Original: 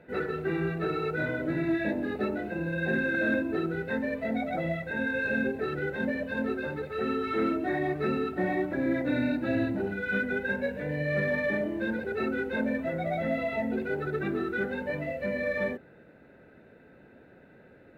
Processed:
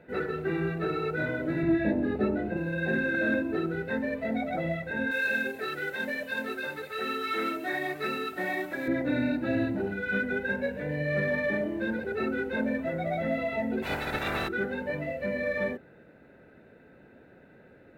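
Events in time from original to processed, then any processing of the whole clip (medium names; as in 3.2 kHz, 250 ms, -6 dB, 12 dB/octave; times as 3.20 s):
1.63–2.57 s: tilt EQ -2 dB/octave
5.11–8.88 s: tilt EQ +4 dB/octave
13.82–14.47 s: spectral peaks clipped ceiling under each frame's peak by 30 dB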